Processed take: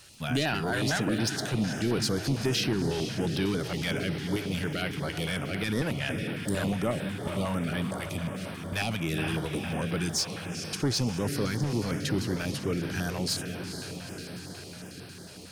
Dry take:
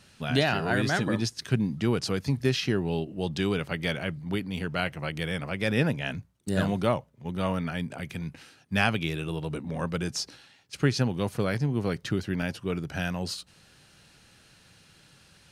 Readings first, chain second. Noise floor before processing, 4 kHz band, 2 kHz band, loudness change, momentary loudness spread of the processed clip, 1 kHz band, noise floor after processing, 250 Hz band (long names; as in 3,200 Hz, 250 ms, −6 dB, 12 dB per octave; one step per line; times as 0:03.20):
−58 dBFS, +1.5 dB, −2.0 dB, −1.0 dB, 9 LU, −2.5 dB, −44 dBFS, −0.5 dB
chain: on a send: feedback delay with all-pass diffusion 461 ms, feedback 73%, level −10.5 dB
on the sum: surface crackle 120 per second −50 dBFS
high-shelf EQ 4,500 Hz +9 dB
in parallel at +1.5 dB: brickwall limiter −18 dBFS, peak gain reduction 12 dB
on the sum: parametric band 310 Hz +4.5 dB 0.38 octaves
soft clipping −14 dBFS, distortion −15 dB
notch on a step sequencer 11 Hz 220–6,900 Hz
level −5.5 dB